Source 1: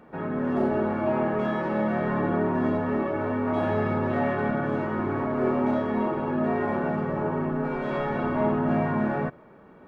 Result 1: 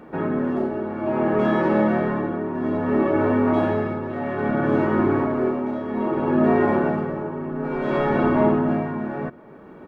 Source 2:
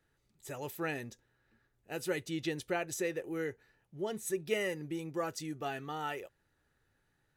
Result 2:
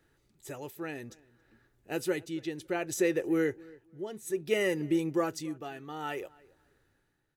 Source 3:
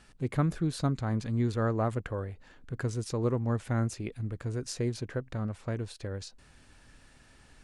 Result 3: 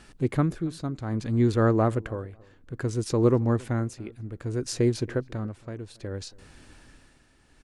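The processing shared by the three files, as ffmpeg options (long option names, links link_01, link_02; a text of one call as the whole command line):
ffmpeg -i in.wav -filter_complex "[0:a]equalizer=frequency=330:width_type=o:width=0.65:gain=5.5,tremolo=f=0.61:d=0.71,asplit=2[link_01][link_02];[link_02]adelay=275,lowpass=frequency=2200:poles=1,volume=-23dB,asplit=2[link_03][link_04];[link_04]adelay=275,lowpass=frequency=2200:poles=1,volume=0.22[link_05];[link_03][link_05]amix=inputs=2:normalize=0[link_06];[link_01][link_06]amix=inputs=2:normalize=0,volume=6dB" out.wav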